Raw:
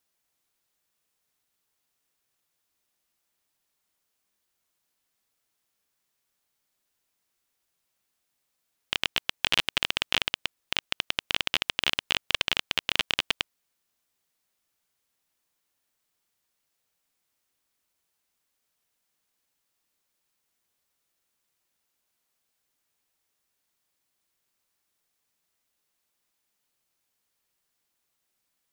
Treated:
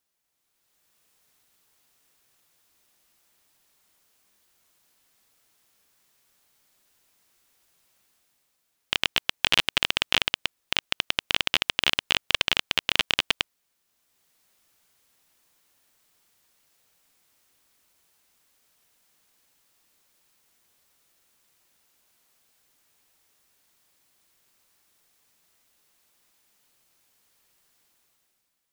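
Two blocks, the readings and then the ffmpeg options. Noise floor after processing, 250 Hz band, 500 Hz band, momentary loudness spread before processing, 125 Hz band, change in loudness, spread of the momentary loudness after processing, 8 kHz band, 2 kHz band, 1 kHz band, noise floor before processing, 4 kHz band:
-76 dBFS, +3.0 dB, +3.0 dB, 5 LU, +3.0 dB, +3.0 dB, 5 LU, +3.0 dB, +3.0 dB, +3.0 dB, -79 dBFS, +3.0 dB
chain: -af "dynaudnorm=f=110:g=13:m=12.5dB,volume=-1dB"

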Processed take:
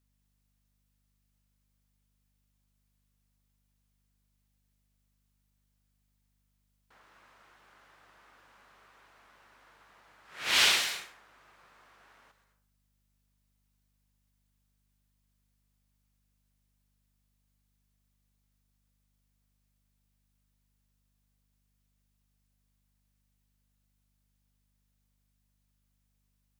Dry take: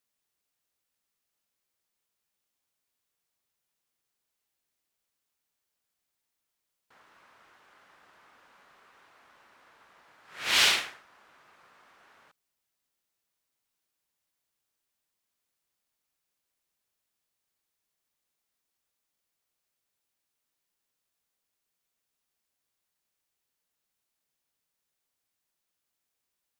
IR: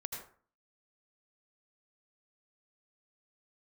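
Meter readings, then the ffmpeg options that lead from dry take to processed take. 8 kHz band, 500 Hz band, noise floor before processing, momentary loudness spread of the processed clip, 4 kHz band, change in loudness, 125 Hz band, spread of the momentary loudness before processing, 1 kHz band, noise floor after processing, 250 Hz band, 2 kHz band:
0.0 dB, -1.0 dB, -84 dBFS, 16 LU, -1.0 dB, -1.5 dB, 0.0 dB, 17 LU, -1.0 dB, -75 dBFS, -1.0 dB, -1.0 dB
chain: -filter_complex "[0:a]aeval=exprs='val(0)+0.000224*(sin(2*PI*50*n/s)+sin(2*PI*2*50*n/s)/2+sin(2*PI*3*50*n/s)/3+sin(2*PI*4*50*n/s)/4+sin(2*PI*5*50*n/s)/5)':c=same,asplit=2[a][b];[b]highshelf=f=3.8k:g=10[c];[1:a]atrim=start_sample=2205,adelay=126[d];[c][d]afir=irnorm=-1:irlink=0,volume=-11dB[e];[a][e]amix=inputs=2:normalize=0,volume=-1.5dB"

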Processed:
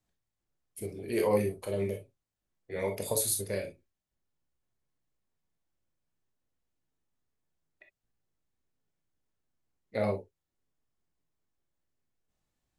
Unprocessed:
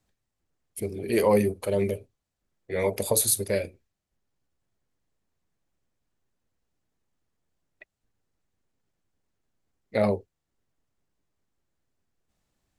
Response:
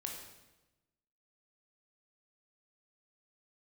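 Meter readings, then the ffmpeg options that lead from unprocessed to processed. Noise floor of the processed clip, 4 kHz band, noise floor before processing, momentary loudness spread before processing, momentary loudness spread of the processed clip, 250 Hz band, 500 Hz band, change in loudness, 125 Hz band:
under -85 dBFS, -6.5 dB, -83 dBFS, 14 LU, 14 LU, -7.0 dB, -6.0 dB, -6.5 dB, -5.0 dB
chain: -filter_complex "[1:a]atrim=start_sample=2205,atrim=end_sample=3087[a];[0:a][a]afir=irnorm=-1:irlink=0,volume=-4dB"

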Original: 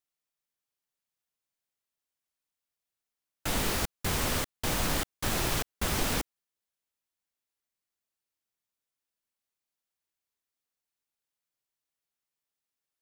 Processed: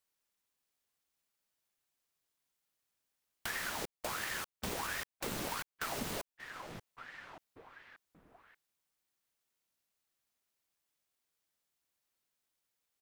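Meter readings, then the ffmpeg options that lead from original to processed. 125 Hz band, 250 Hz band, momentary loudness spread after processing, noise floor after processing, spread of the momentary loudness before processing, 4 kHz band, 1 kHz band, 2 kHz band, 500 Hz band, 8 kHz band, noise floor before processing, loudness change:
-15.0 dB, -10.5 dB, 19 LU, under -85 dBFS, 4 LU, -9.5 dB, -6.0 dB, -4.5 dB, -8.0 dB, -10.0 dB, under -85 dBFS, -9.5 dB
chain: -filter_complex "[0:a]asplit=2[a][b];[b]adelay=583,lowpass=f=2.7k:p=1,volume=-20dB,asplit=2[c][d];[d]adelay=583,lowpass=f=2.7k:p=1,volume=0.52,asplit=2[e][f];[f]adelay=583,lowpass=f=2.7k:p=1,volume=0.52,asplit=2[g][h];[h]adelay=583,lowpass=f=2.7k:p=1,volume=0.52[i];[a][c][e][g][i]amix=inputs=5:normalize=0,acompressor=threshold=-48dB:ratio=2.5,aeval=exprs='val(0)*sin(2*PI*1000*n/s+1000*0.85/1.4*sin(2*PI*1.4*n/s))':c=same,volume=7dB"

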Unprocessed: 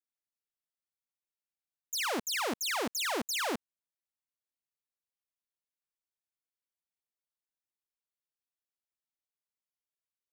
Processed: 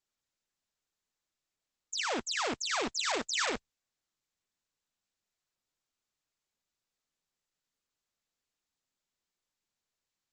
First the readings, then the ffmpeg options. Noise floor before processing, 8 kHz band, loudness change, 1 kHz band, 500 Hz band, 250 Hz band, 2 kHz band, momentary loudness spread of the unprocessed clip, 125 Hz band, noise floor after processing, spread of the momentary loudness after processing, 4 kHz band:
under -85 dBFS, -0.5 dB, 0.0 dB, 0.0 dB, -0.5 dB, -2.0 dB, +0.5 dB, 4 LU, -1.5 dB, under -85 dBFS, 5 LU, +1.0 dB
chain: -ar 48000 -c:a libopus -b:a 10k

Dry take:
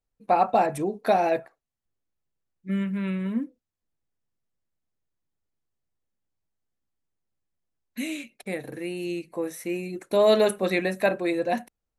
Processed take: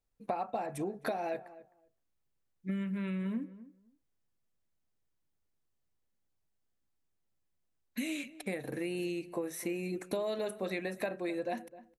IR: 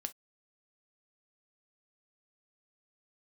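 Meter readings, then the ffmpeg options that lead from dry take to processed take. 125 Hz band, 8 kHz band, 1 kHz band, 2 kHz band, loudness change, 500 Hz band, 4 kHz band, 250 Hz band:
-7.5 dB, -6.0 dB, -14.5 dB, -10.0 dB, -11.0 dB, -12.5 dB, -11.0 dB, -8.0 dB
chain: -filter_complex "[0:a]acompressor=threshold=-32dB:ratio=12,asplit=2[a][b];[b]adelay=259,lowpass=f=1.2k:p=1,volume=-16dB,asplit=2[c][d];[d]adelay=259,lowpass=f=1.2k:p=1,volume=0.17[e];[c][e]amix=inputs=2:normalize=0[f];[a][f]amix=inputs=2:normalize=0"

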